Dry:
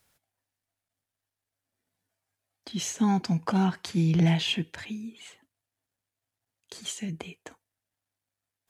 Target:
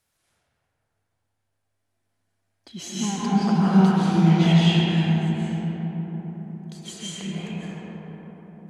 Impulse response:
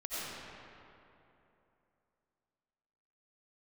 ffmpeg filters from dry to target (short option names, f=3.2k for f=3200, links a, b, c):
-filter_complex "[1:a]atrim=start_sample=2205,asetrate=23814,aresample=44100[a];[0:a][a]afir=irnorm=-1:irlink=0,volume=-2.5dB"